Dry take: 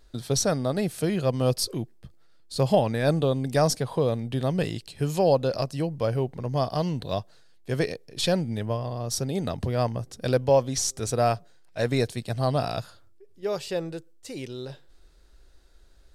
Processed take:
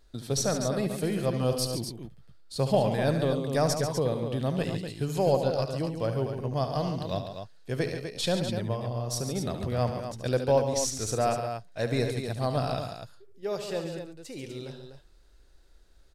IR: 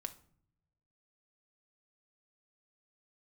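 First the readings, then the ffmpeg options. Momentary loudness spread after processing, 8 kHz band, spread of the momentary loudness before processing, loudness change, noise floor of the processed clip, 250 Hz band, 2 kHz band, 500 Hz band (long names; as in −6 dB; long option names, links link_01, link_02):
14 LU, −2.5 dB, 13 LU, −2.5 dB, −56 dBFS, −2.5 dB, −2.5 dB, −2.5 dB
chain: -af "aeval=exprs='0.355*(cos(1*acos(clip(val(0)/0.355,-1,1)))-cos(1*PI/2))+0.00251*(cos(8*acos(clip(val(0)/0.355,-1,1)))-cos(8*PI/2))':channel_layout=same,aecho=1:1:72.89|139.9|247.8:0.316|0.355|0.398,volume=-4dB"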